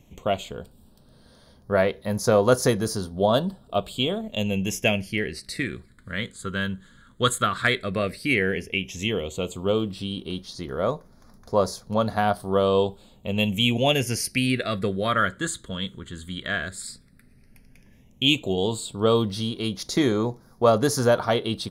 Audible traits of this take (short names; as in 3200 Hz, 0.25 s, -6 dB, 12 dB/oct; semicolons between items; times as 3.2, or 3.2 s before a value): phasing stages 8, 0.11 Hz, lowest notch 740–2700 Hz